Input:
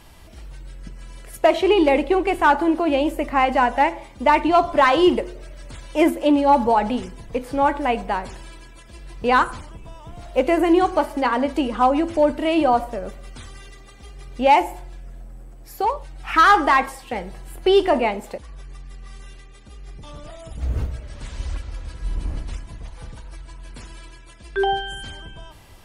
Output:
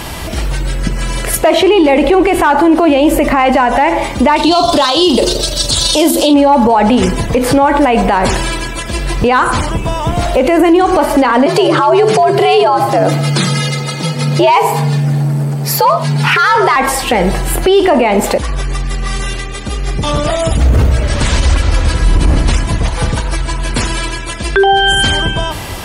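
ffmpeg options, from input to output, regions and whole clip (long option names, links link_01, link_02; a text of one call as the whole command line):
ffmpeg -i in.wav -filter_complex "[0:a]asettb=1/sr,asplit=3[link_01][link_02][link_03];[link_01]atrim=end=4.364[link_04];[link_02]atrim=start=4.36:end=6.34,asetpts=PTS-STARTPTS,afade=type=in:duration=0.004:curve=qsin,afade=type=out:start_time=1.976:duration=0.004:curve=qsin,highshelf=frequency=2900:width_type=q:width=3:gain=10.5,tremolo=f=24:d=0.4,asplit=2[link_05][link_06];[link_06]adelay=35,volume=-14dB[link_07];[link_05][link_07]amix=inputs=2:normalize=0,atrim=end_sample=87318[link_08];[link_03]atrim=start=6.336[link_09];[link_04][link_08]acrossfade=duration=0.004:curve1=hsin:curve2=qsin[link_10];[link_10][link_09]acrossfade=duration=0.004:curve1=qsin:curve2=hsin,asettb=1/sr,asplit=3[link_11][link_12][link_13];[link_11]atrim=end=11.464[link_14];[link_12]atrim=start=11.46:end=16.76,asetpts=PTS-STARTPTS,afade=type=in:duration=0.004:curve=qsin,afade=type=out:start_time=5.296:duration=0.004:curve=qsin,equalizer=frequency=4400:width_type=o:width=0.33:gain=7,afreqshift=100,bandreject=frequency=50:width_type=h:width=6,bandreject=frequency=100:width_type=h:width=6,bandreject=frequency=150:width_type=h:width=6,bandreject=frequency=200:width_type=h:width=6,bandreject=frequency=250:width_type=h:width=6,bandreject=frequency=300:width_type=h:width=6,bandreject=frequency=350:width_type=h:width=6,bandreject=frequency=400:width_type=h:width=6[link_15];[link_13]atrim=start=16.756[link_16];[link_14][link_15]acrossfade=duration=0.004:curve1=hsin:curve2=qsin[link_17];[link_17][link_16]acrossfade=duration=0.004:curve1=qsin:curve2=hsin,highpass=frequency=70:poles=1,acompressor=threshold=-25dB:ratio=3,alimiter=level_in=27dB:limit=-1dB:release=50:level=0:latency=1,volume=-1dB" out.wav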